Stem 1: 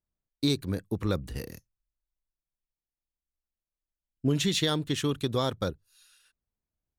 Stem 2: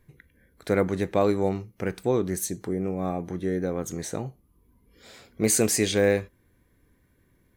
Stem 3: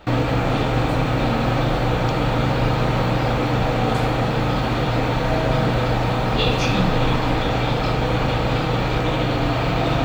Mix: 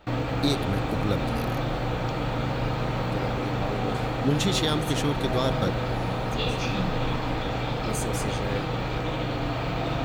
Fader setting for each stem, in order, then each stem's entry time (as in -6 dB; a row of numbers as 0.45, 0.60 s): +1.0, -12.0, -8.0 dB; 0.00, 2.45, 0.00 s